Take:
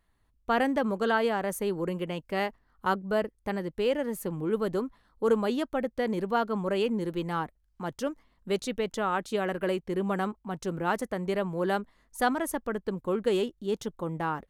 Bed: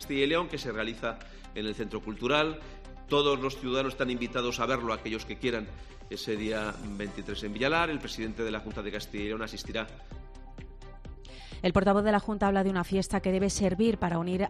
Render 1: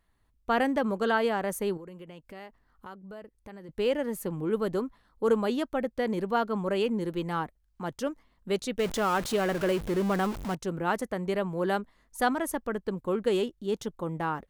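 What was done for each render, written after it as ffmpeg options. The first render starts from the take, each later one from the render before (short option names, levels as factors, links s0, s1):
-filter_complex "[0:a]asettb=1/sr,asplit=3[s0][s1][s2];[s0]atrim=end=1.774[s3];[s1]atrim=start=1.77:end=3.69,asetpts=PTS-STARTPTS,afade=t=in:d=0.004:c=qsin,afade=t=out:st=1.916:d=0.004:c=qsin,acompressor=threshold=0.00501:ratio=3:attack=3.2:release=140:knee=1:detection=peak[s4];[s2]atrim=start=3.686[s5];[s3][s4]acrossfade=d=0.004:c1=hsin:c2=qsin[s6];[s6][s5]acrossfade=d=0.004:c1=qsin:c2=hsin,asettb=1/sr,asplit=3[s7][s8][s9];[s7]atrim=end=8.794[s10];[s8]atrim=start=8.79:end=10.55,asetpts=PTS-STARTPTS,afade=t=in:d=0.004:c=qsin,afade=t=out:st=1.756:d=0.004:c=qsin,aeval=exprs='val(0)+0.5*0.0251*sgn(val(0))':c=same[s11];[s9]atrim=start=10.546[s12];[s10][s11]acrossfade=d=0.004:c1=hsin:c2=qsin[s13];[s13][s12]acrossfade=d=0.004:c1=qsin:c2=hsin"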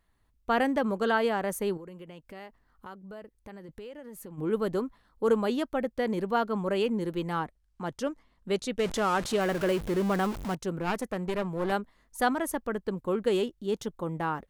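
-filter_complex "[0:a]asplit=3[s0][s1][s2];[s0]afade=t=out:st=3.65:d=0.02[s3];[s1]acompressor=threshold=0.00891:ratio=6:attack=3.2:release=140:knee=1:detection=peak,afade=t=in:st=3.65:d=0.02,afade=t=out:st=4.37:d=0.02[s4];[s2]afade=t=in:st=4.37:d=0.02[s5];[s3][s4][s5]amix=inputs=3:normalize=0,asettb=1/sr,asplit=3[s6][s7][s8];[s6]atrim=end=7.404[s9];[s7]atrim=start=7.4:end=9.41,asetpts=PTS-STARTPTS,afade=t=in:d=0.004:c=qsin,afade=t=out:st=2.006:d=0.004:c=qsin,lowpass=11000[s10];[s8]atrim=start=9.406[s11];[s9][s10]acrossfade=d=0.004:c1=hsin:c2=qsin[s12];[s12][s11]acrossfade=d=0.004:c1=qsin:c2=hsin,asettb=1/sr,asplit=3[s13][s14][s15];[s13]atrim=end=10.804[s16];[s14]atrim=start=10.8:end=11.72,asetpts=PTS-STARTPTS,afade=t=in:d=0.004:c=qsin,afade=t=out:st=0.916:d=0.004:c=qsin,aeval=exprs='clip(val(0),-1,0.0237)':c=same[s17];[s15]atrim=start=11.716[s18];[s16][s17]acrossfade=d=0.004:c1=hsin:c2=qsin[s19];[s19][s18]acrossfade=d=0.004:c1=qsin:c2=hsin"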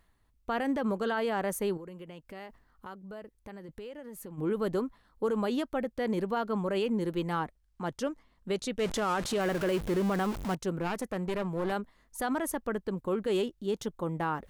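-af "alimiter=limit=0.0841:level=0:latency=1:release=43,areverse,acompressor=mode=upward:threshold=0.00398:ratio=2.5,areverse"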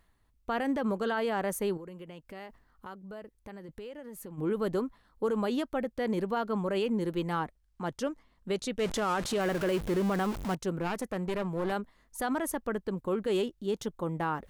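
-af anull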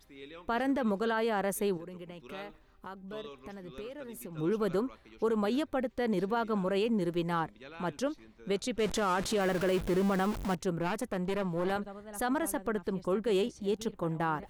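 -filter_complex "[1:a]volume=0.0841[s0];[0:a][s0]amix=inputs=2:normalize=0"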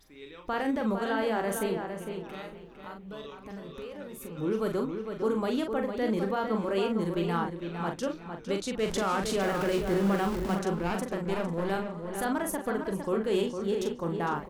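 -filter_complex "[0:a]asplit=2[s0][s1];[s1]adelay=41,volume=0.531[s2];[s0][s2]amix=inputs=2:normalize=0,asplit=2[s3][s4];[s4]adelay=456,lowpass=f=3400:p=1,volume=0.473,asplit=2[s5][s6];[s6]adelay=456,lowpass=f=3400:p=1,volume=0.26,asplit=2[s7][s8];[s8]adelay=456,lowpass=f=3400:p=1,volume=0.26[s9];[s3][s5][s7][s9]amix=inputs=4:normalize=0"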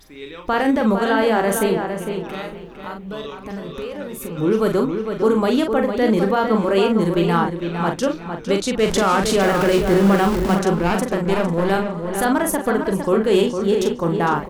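-af "volume=3.76"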